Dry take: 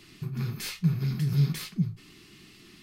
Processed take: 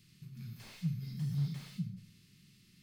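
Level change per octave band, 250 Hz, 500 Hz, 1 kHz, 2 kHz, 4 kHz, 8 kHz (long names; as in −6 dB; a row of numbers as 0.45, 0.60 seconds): −10.0 dB, below −15 dB, can't be measured, −15.0 dB, −14.0 dB, below −15 dB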